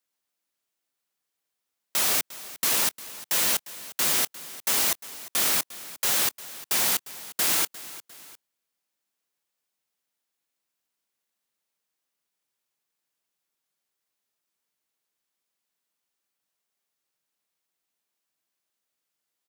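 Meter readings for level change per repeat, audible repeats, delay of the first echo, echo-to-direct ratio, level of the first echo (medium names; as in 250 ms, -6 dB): -6.5 dB, 2, 352 ms, -16.0 dB, -17.0 dB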